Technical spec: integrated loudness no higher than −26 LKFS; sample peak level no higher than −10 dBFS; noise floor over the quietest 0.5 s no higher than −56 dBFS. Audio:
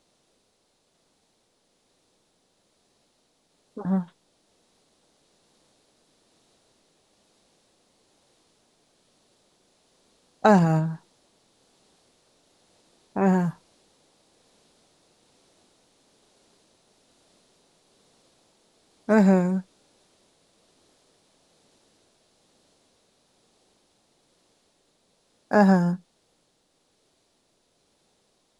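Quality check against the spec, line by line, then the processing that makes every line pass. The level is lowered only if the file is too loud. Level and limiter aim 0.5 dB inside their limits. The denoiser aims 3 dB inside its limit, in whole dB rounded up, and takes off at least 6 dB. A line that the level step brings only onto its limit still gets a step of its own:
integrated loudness −22.5 LKFS: out of spec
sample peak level −4.0 dBFS: out of spec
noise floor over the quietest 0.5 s −70 dBFS: in spec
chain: level −4 dB
brickwall limiter −10.5 dBFS

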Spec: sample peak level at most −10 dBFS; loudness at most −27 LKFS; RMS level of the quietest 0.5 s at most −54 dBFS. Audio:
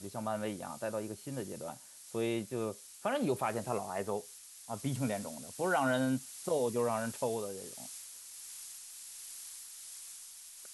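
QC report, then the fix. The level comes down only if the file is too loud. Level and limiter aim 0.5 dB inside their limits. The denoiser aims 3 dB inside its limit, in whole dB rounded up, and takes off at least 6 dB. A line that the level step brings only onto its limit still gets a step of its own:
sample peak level −19.5 dBFS: in spec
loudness −37.0 LKFS: in spec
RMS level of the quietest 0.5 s −52 dBFS: out of spec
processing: broadband denoise 6 dB, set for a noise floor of −52 dBFS

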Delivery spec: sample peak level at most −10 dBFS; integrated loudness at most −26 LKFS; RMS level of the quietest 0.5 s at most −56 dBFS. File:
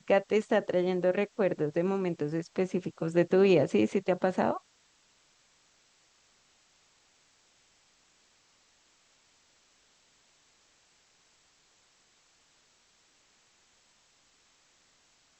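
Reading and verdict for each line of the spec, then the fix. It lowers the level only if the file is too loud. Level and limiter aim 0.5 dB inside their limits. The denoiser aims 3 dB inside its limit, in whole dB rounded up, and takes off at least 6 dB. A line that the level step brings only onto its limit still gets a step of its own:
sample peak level −12.5 dBFS: in spec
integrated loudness −28.5 LKFS: in spec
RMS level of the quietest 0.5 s −67 dBFS: in spec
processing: no processing needed

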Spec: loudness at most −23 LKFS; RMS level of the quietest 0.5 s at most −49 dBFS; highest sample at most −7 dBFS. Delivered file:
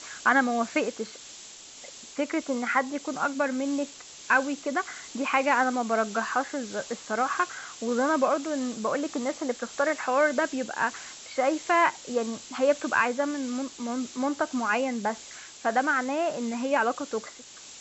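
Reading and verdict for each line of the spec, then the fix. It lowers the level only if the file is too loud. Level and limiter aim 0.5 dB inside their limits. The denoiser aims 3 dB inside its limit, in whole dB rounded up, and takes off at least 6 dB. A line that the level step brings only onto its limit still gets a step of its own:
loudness −27.5 LKFS: in spec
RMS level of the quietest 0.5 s −47 dBFS: out of spec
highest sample −9.5 dBFS: in spec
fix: broadband denoise 6 dB, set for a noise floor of −47 dBFS

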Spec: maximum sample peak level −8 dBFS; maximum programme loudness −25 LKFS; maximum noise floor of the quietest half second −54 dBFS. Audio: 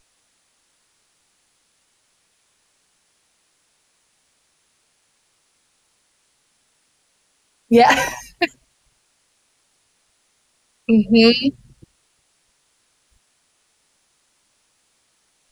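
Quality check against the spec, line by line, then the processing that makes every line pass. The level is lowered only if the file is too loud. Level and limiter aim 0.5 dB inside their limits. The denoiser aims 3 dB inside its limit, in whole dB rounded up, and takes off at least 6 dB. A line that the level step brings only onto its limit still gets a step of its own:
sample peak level −3.5 dBFS: out of spec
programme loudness −16.5 LKFS: out of spec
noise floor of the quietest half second −65 dBFS: in spec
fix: level −9 dB

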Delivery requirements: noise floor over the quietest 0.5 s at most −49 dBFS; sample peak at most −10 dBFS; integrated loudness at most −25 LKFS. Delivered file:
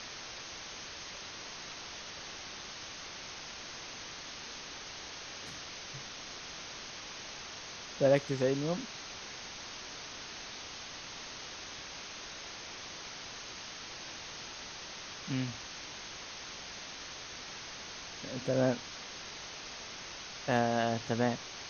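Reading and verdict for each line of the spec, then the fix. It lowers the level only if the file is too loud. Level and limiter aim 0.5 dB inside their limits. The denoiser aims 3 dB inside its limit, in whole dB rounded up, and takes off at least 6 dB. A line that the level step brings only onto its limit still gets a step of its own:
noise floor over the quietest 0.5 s −45 dBFS: out of spec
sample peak −15.0 dBFS: in spec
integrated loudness −38.5 LKFS: in spec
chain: broadband denoise 7 dB, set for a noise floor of −45 dBFS

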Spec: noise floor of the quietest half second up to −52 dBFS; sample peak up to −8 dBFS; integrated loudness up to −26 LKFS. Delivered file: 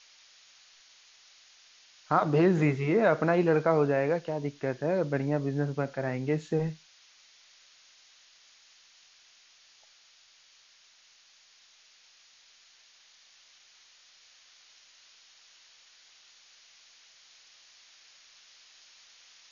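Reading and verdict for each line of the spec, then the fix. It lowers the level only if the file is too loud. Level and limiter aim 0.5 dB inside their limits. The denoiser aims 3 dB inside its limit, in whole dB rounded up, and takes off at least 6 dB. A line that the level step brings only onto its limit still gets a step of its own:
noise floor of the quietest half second −61 dBFS: in spec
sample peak −11.0 dBFS: in spec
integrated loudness −27.5 LKFS: in spec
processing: no processing needed

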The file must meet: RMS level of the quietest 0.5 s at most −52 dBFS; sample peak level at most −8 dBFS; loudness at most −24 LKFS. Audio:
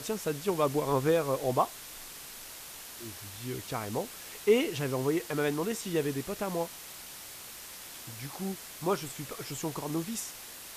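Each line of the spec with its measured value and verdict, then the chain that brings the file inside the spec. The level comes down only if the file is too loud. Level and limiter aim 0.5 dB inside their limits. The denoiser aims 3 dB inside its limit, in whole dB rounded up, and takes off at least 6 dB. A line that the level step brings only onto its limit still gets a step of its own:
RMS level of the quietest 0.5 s −46 dBFS: out of spec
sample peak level −13.0 dBFS: in spec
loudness −33.0 LKFS: in spec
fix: broadband denoise 9 dB, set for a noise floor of −46 dBFS

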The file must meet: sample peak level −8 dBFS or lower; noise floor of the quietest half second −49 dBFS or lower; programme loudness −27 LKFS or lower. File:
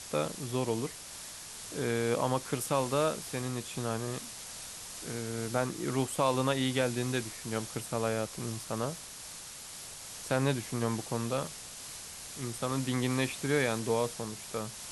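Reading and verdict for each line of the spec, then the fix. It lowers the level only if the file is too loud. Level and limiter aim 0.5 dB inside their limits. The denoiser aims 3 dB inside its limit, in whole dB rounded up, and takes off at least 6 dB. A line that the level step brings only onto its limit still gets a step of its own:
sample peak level −14.0 dBFS: in spec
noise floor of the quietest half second −46 dBFS: out of spec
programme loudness −33.5 LKFS: in spec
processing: broadband denoise 6 dB, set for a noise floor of −46 dBFS

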